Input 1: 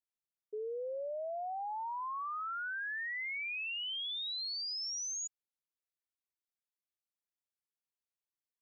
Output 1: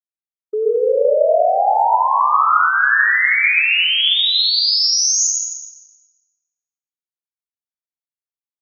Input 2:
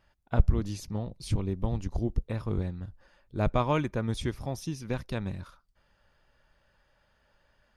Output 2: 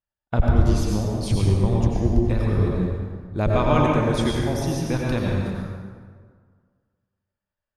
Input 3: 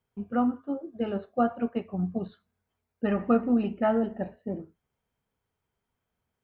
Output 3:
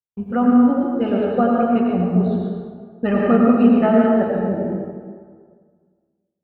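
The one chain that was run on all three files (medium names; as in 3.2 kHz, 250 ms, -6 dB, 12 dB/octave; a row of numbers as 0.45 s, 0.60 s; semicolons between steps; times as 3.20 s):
expander -44 dBFS; in parallel at +2 dB: peak limiter -20 dBFS; on the sum: plate-style reverb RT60 1.8 s, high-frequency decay 0.6×, pre-delay 75 ms, DRR -2.5 dB; peak normalisation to -3 dBFS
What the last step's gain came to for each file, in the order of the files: +13.0 dB, -1.0 dB, +1.0 dB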